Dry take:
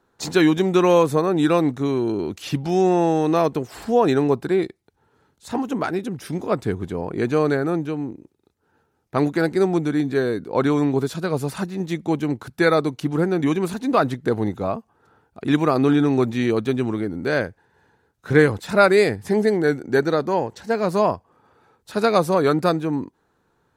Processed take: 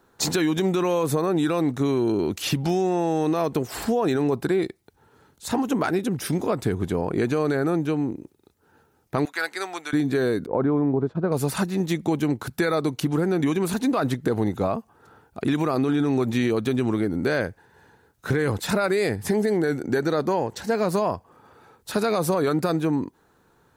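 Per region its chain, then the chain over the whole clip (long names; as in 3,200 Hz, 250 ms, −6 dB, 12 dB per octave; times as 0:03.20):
0:09.25–0:09.93: high-pass filter 1,300 Hz + high-shelf EQ 5,400 Hz −6.5 dB
0:10.46–0:11.32: low-pass filter 1,000 Hz + downward expander −31 dBFS
whole clip: high-shelf EQ 9,800 Hz +8.5 dB; brickwall limiter −14 dBFS; downward compressor 2.5 to 1, threshold −26 dBFS; level +5 dB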